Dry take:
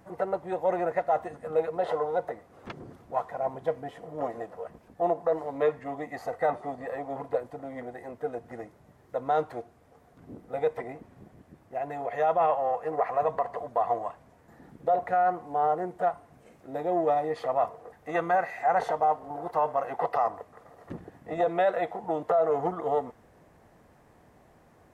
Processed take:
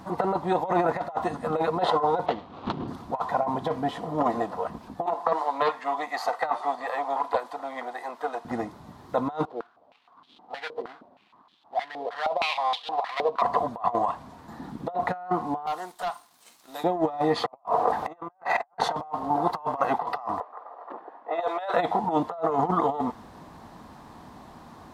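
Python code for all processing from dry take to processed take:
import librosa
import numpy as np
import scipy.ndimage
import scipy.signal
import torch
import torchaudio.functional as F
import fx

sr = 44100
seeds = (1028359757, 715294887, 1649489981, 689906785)

y = fx.chain(x, sr, fx.median_filter(points=25),
    fx.lowpass(hz=2900.0, slope=12),
    fx.high_shelf(hz=2000.0, db=8.0), at=(2.26, 2.88))
y = fx.chain(y, sr, fx.highpass(hz=690.0, slope=12),
    fx.doppler_dist(depth_ms=0.1), at=(5.06, 8.45))
y = fx.chain(y, sr, fx.dead_time(dead_ms=0.19),
    fx.filter_held_bandpass(hz=6.4, low_hz=460.0, high_hz=3300.0), at=(9.45, 13.42))
y = fx.chain(y, sr, fx.differentiator(),
    fx.leveller(passes=2), at=(15.66, 16.84))
y = fx.chain(y, sr, fx.peak_eq(hz=730.0, db=14.5, octaves=2.4),
    fx.band_squash(depth_pct=40), at=(17.47, 18.77))
y = fx.chain(y, sr, fx.highpass(hz=500.0, slope=24),
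    fx.env_lowpass(base_hz=1000.0, full_db=-23.0), at=(20.4, 21.74))
y = fx.graphic_eq_10(y, sr, hz=(125, 250, 500, 1000, 2000, 4000), db=(-9, 6, -6, 11, -4, 11))
y = fx.over_compress(y, sr, threshold_db=-28.0, ratio=-0.5)
y = fx.peak_eq(y, sr, hz=130.0, db=8.5, octaves=1.6)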